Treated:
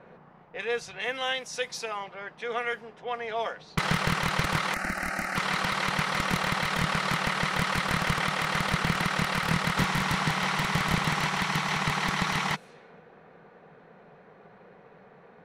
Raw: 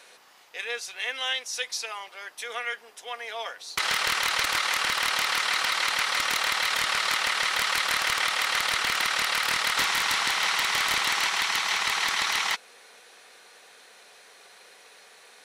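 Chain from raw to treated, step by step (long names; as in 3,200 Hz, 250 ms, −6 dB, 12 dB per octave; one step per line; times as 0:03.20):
low-pass that shuts in the quiet parts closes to 1,300 Hz, open at −27.5 dBFS
drawn EQ curve 100 Hz 0 dB, 160 Hz +12 dB, 270 Hz −6 dB, 4,100 Hz −23 dB
in parallel at +2 dB: speech leveller within 3 dB
0:04.74–0:05.36: on the sum: phaser with its sweep stopped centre 680 Hz, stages 8
level +8.5 dB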